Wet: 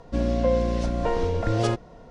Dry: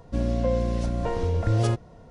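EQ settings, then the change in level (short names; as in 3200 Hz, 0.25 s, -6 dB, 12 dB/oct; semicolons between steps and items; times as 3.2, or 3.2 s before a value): LPF 6900 Hz 12 dB/oct; bell 100 Hz -8.5 dB 1.4 oct; +4.0 dB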